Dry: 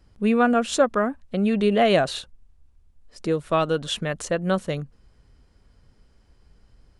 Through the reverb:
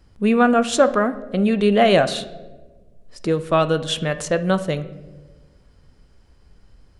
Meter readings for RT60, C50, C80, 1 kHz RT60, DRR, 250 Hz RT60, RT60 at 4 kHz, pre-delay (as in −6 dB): 1.3 s, 14.5 dB, 17.5 dB, 1.0 s, 11.5 dB, 1.6 s, 0.75 s, 12 ms